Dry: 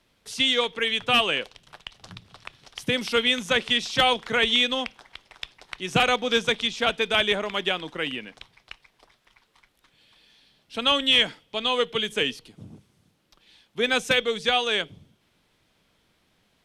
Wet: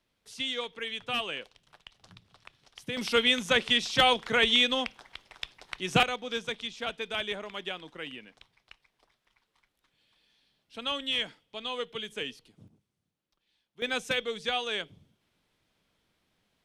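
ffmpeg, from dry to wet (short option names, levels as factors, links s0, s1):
-af "asetnsamples=n=441:p=0,asendcmd='2.97 volume volume -2dB;6.03 volume volume -11dB;12.68 volume volume -19.5dB;13.82 volume volume -8dB',volume=0.282"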